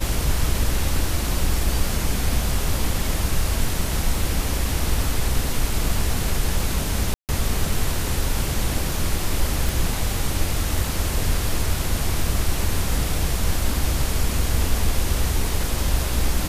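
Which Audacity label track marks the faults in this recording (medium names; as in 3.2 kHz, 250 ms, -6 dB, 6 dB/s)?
7.140000	7.290000	dropout 148 ms
9.690000	9.690000	pop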